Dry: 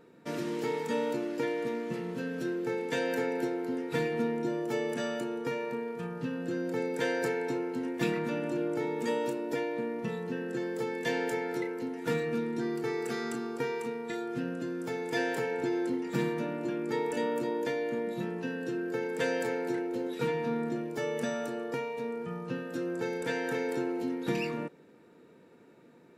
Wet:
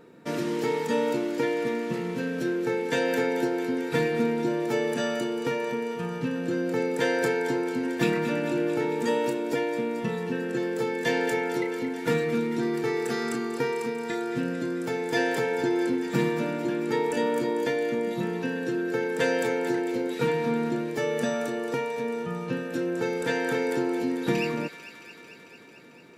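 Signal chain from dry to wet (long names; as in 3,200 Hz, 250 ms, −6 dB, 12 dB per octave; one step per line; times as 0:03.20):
delay with a high-pass on its return 223 ms, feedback 77%, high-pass 1,500 Hz, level −10.5 dB
level +5.5 dB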